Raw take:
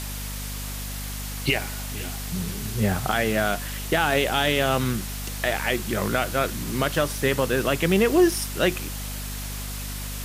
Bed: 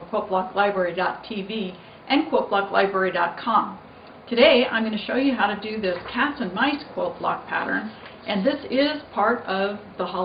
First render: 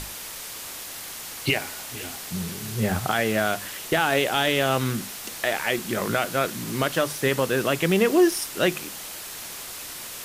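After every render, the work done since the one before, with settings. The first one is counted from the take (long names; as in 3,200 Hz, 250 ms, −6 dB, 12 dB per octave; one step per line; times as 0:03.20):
mains-hum notches 50/100/150/200/250 Hz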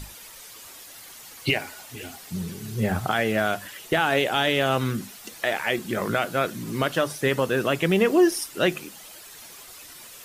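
broadband denoise 10 dB, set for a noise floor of −37 dBFS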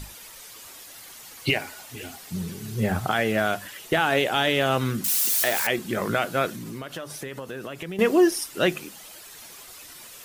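0:05.04–0:05.67: spike at every zero crossing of −18.5 dBFS
0:06.51–0:07.99: downward compressor 5 to 1, threshold −32 dBFS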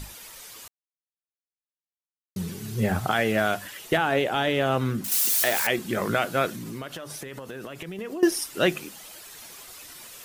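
0:00.68–0:02.36: silence
0:03.97–0:05.12: high-shelf EQ 2,000 Hz −7.5 dB
0:06.95–0:08.23: downward compressor, threshold −32 dBFS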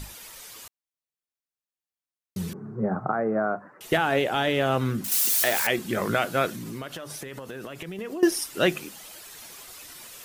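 0:02.53–0:03.81: elliptic band-pass filter 140–1,300 Hz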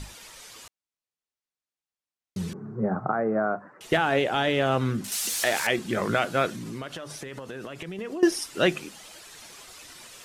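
low-pass filter 8,700 Hz 12 dB per octave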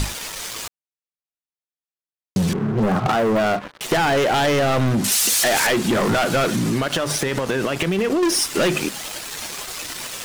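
leveller curve on the samples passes 5
downward compressor, threshold −17 dBFS, peak gain reduction 6 dB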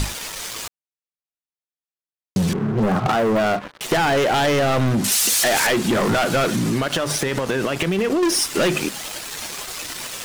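no processing that can be heard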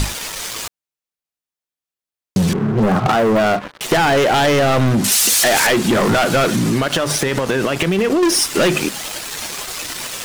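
level +4 dB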